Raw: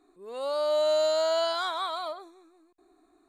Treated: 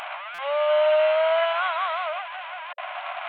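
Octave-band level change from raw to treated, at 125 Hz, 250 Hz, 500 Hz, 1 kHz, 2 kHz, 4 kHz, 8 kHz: can't be measured, below −25 dB, +4.5 dB, +6.5 dB, +12.5 dB, 0.0 dB, below −15 dB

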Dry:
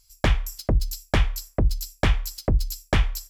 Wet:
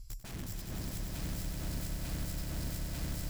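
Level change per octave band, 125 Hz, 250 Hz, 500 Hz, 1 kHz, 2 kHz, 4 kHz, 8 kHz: −13.0, −11.0, −19.0, −18.5, −18.0, −13.5, −7.0 decibels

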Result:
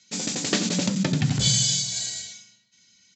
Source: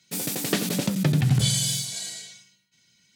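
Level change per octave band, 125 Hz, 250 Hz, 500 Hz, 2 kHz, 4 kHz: −3.0, +0.5, −0.5, +1.5, +3.5 decibels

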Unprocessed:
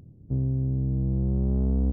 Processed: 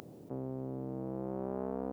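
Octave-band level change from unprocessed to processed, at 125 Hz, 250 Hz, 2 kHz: −20.0 dB, −10.0 dB, can't be measured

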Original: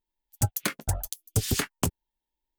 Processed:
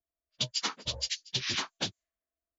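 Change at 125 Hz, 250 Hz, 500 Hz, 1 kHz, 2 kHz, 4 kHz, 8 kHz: −15.0, −11.0, −8.5, −4.5, −2.0, +6.0, −6.5 decibels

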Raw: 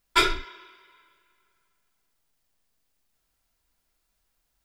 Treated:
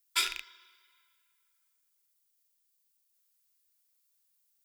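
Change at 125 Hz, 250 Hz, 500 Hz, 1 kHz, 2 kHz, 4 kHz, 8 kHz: below −25 dB, −25.0 dB, −23.5 dB, −15.0 dB, −9.0 dB, −5.5 dB, +0.5 dB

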